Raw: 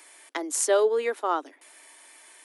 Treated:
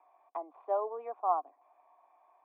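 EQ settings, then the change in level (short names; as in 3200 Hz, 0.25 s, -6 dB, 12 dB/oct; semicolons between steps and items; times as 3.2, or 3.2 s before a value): vocal tract filter a; +5.5 dB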